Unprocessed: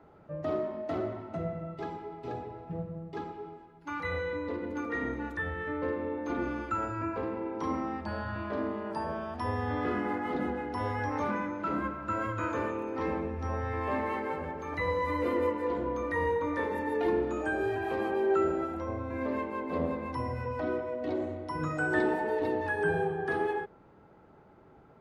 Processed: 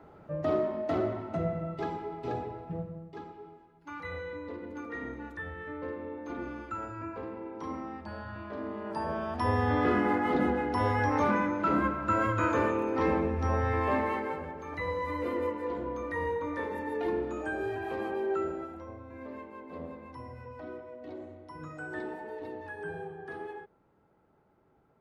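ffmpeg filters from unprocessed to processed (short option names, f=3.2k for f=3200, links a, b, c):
-af "volume=14dB,afade=t=out:st=2.43:d=0.69:silence=0.354813,afade=t=in:st=8.6:d=0.95:silence=0.298538,afade=t=out:st=13.7:d=0.77:silence=0.398107,afade=t=out:st=18.11:d=0.88:silence=0.421697"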